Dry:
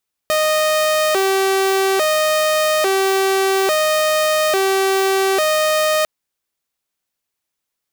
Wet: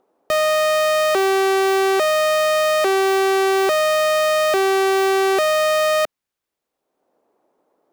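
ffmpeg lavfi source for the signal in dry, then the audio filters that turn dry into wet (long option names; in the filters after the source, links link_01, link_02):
-f lavfi -i "aevalsrc='0.266*(2*mod((502.5*t+116.5/0.59*(0.5-abs(mod(0.59*t,1)-0.5))),1)-1)':duration=5.75:sample_rate=44100"
-filter_complex "[0:a]highshelf=frequency=3600:gain=-7,acrossover=split=280|790|2200[link_01][link_02][link_03][link_04];[link_02]acompressor=mode=upward:threshold=-41dB:ratio=2.5[link_05];[link_01][link_05][link_03][link_04]amix=inputs=4:normalize=0"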